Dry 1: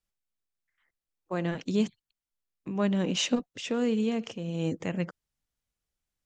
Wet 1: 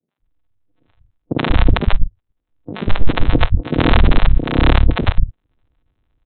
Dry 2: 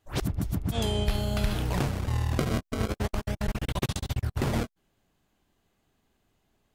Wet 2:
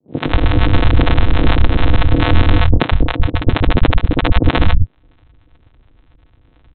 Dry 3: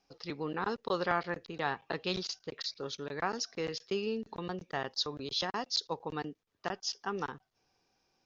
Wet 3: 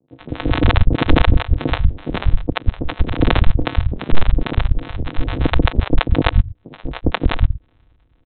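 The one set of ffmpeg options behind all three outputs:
ffmpeg -i in.wav -filter_complex "[0:a]acompressor=threshold=-44dB:ratio=1.5,aeval=exprs='0.0944*(cos(1*acos(clip(val(0)/0.0944,-1,1)))-cos(1*PI/2))+0.00944*(cos(3*acos(clip(val(0)/0.0944,-1,1)))-cos(3*PI/2))+0.0266*(cos(6*acos(clip(val(0)/0.0944,-1,1)))-cos(6*PI/2))+0.00335*(cos(8*acos(clip(val(0)/0.0944,-1,1)))-cos(8*PI/2))':channel_layout=same,aresample=8000,acrusher=samples=40:mix=1:aa=0.000001,aresample=44100,acrossover=split=150|560[link_01][link_02][link_03];[link_03]adelay=80[link_04];[link_01]adelay=190[link_05];[link_05][link_02][link_04]amix=inputs=3:normalize=0,apsyclip=29.5dB,volume=-2dB" out.wav

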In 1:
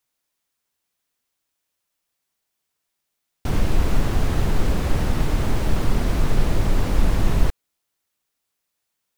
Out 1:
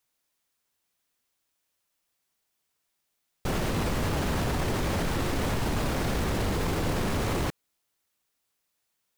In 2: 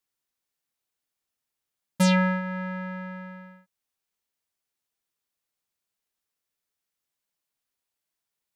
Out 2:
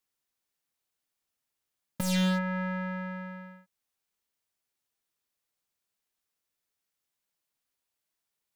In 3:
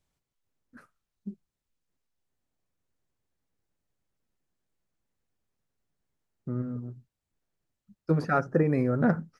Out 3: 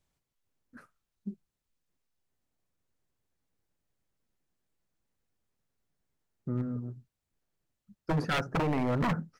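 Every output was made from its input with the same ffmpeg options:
ffmpeg -i in.wav -af "aeval=exprs='0.596*(cos(1*acos(clip(val(0)/0.596,-1,1)))-cos(1*PI/2))+0.0168*(cos(6*acos(clip(val(0)/0.596,-1,1)))-cos(6*PI/2))':channel_layout=same,aeval=exprs='0.075*(abs(mod(val(0)/0.075+3,4)-2)-1)':channel_layout=same" out.wav

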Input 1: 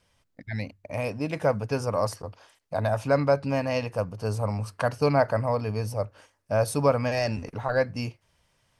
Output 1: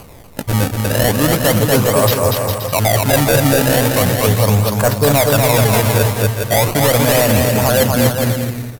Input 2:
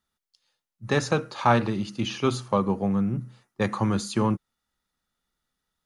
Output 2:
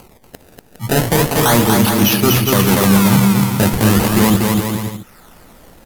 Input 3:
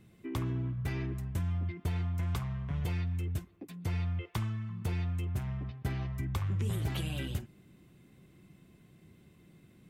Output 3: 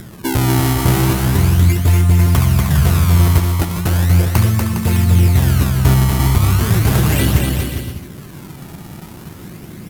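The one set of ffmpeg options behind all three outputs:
ffmpeg -i in.wav -filter_complex "[0:a]highshelf=frequency=10000:gain=-11,asoftclip=type=tanh:threshold=-18.5dB,areverse,acompressor=threshold=-32dB:ratio=6,areverse,acrusher=samples=24:mix=1:aa=0.000001:lfo=1:lforange=38.4:lforate=0.37,acompressor=mode=upward:threshold=-51dB:ratio=2.5,equalizer=frequency=13000:width_type=o:width=0.95:gain=11,asplit=2[link_01][link_02];[link_02]aecho=0:1:240|408|525.6|607.9|665.5:0.631|0.398|0.251|0.158|0.1[link_03];[link_01][link_03]amix=inputs=2:normalize=0,alimiter=level_in=22dB:limit=-1dB:release=50:level=0:latency=1,volume=-1dB" out.wav

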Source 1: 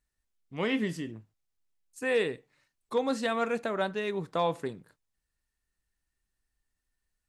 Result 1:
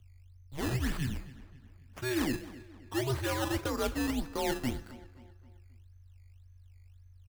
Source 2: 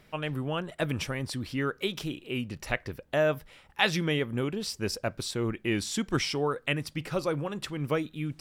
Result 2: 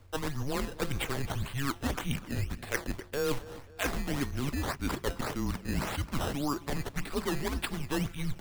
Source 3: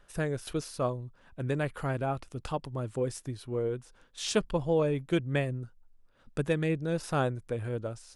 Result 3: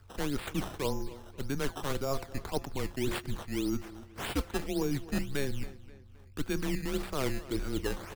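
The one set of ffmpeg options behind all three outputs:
ffmpeg -i in.wav -filter_complex "[0:a]agate=range=-8dB:threshold=-57dB:ratio=16:detection=peak,highpass=95,bandreject=frequency=165.3:width_type=h:width=4,bandreject=frequency=330.6:width_type=h:width=4,bandreject=frequency=495.9:width_type=h:width=4,bandreject=frequency=661.2:width_type=h:width=4,bandreject=frequency=826.5:width_type=h:width=4,bandreject=frequency=991.8:width_type=h:width=4,bandreject=frequency=1157.1:width_type=h:width=4,bandreject=frequency=1322.4:width_type=h:width=4,bandreject=frequency=1487.7:width_type=h:width=4,bandreject=frequency=1653:width_type=h:width=4,bandreject=frequency=1818.3:width_type=h:width=4,bandreject=frequency=1983.6:width_type=h:width=4,bandreject=frequency=2148.9:width_type=h:width=4,bandreject=frequency=2314.2:width_type=h:width=4,bandreject=frequency=2479.5:width_type=h:width=4,bandreject=frequency=2644.8:width_type=h:width=4,bandreject=frequency=2810.1:width_type=h:width=4,areverse,acompressor=threshold=-37dB:ratio=6,areverse,aeval=exprs='val(0)+0.000794*(sin(2*PI*50*n/s)+sin(2*PI*2*50*n/s)/2+sin(2*PI*3*50*n/s)/3+sin(2*PI*4*50*n/s)/4+sin(2*PI*5*50*n/s)/5)':channel_layout=same,acrusher=samples=13:mix=1:aa=0.000001:lfo=1:lforange=13:lforate=1.8,afreqshift=-140,asplit=2[link_01][link_02];[link_02]adelay=265,lowpass=frequency=4400:poles=1,volume=-17dB,asplit=2[link_03][link_04];[link_04]adelay=265,lowpass=frequency=4400:poles=1,volume=0.46,asplit=2[link_05][link_06];[link_06]adelay=265,lowpass=frequency=4400:poles=1,volume=0.46,asplit=2[link_07][link_08];[link_08]adelay=265,lowpass=frequency=4400:poles=1,volume=0.46[link_09];[link_03][link_05][link_07][link_09]amix=inputs=4:normalize=0[link_10];[link_01][link_10]amix=inputs=2:normalize=0,volume=8dB" out.wav

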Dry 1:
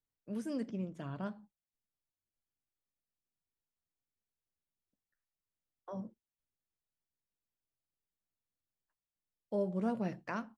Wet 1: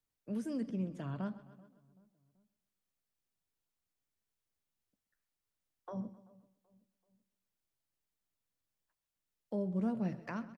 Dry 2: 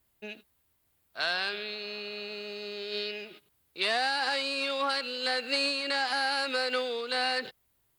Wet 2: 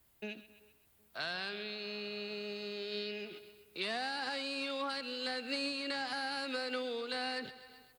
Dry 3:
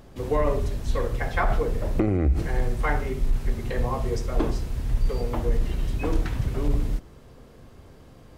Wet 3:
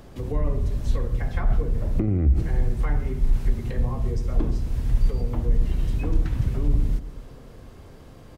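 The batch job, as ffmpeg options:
ffmpeg -i in.wav -filter_complex "[0:a]asplit=2[link_01][link_02];[link_02]aecho=0:1:130|260|390|520:0.112|0.055|0.0269|0.0132[link_03];[link_01][link_03]amix=inputs=2:normalize=0,acrossover=split=260[link_04][link_05];[link_05]acompressor=threshold=-49dB:ratio=2[link_06];[link_04][link_06]amix=inputs=2:normalize=0,asplit=2[link_07][link_08];[link_08]adelay=383,lowpass=frequency=1100:poles=1,volume=-23dB,asplit=2[link_09][link_10];[link_10]adelay=383,lowpass=frequency=1100:poles=1,volume=0.51,asplit=2[link_11][link_12];[link_12]adelay=383,lowpass=frequency=1100:poles=1,volume=0.51[link_13];[link_09][link_11][link_13]amix=inputs=3:normalize=0[link_14];[link_07][link_14]amix=inputs=2:normalize=0,volume=3dB" out.wav

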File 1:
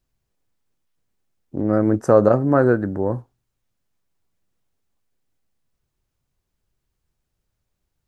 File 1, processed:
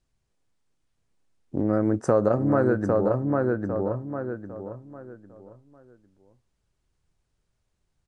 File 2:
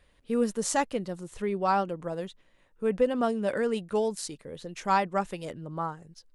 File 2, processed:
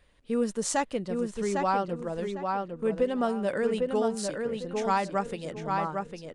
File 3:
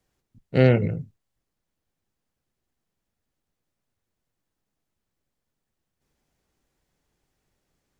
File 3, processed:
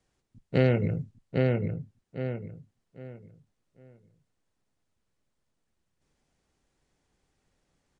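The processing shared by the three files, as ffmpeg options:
ffmpeg -i in.wav -filter_complex "[0:a]asplit=2[link_01][link_02];[link_02]adelay=802,lowpass=frequency=3400:poles=1,volume=-4.5dB,asplit=2[link_03][link_04];[link_04]adelay=802,lowpass=frequency=3400:poles=1,volume=0.28,asplit=2[link_05][link_06];[link_06]adelay=802,lowpass=frequency=3400:poles=1,volume=0.28,asplit=2[link_07][link_08];[link_08]adelay=802,lowpass=frequency=3400:poles=1,volume=0.28[link_09];[link_01][link_03][link_05][link_07][link_09]amix=inputs=5:normalize=0,aresample=22050,aresample=44100,acompressor=threshold=-22dB:ratio=2" out.wav

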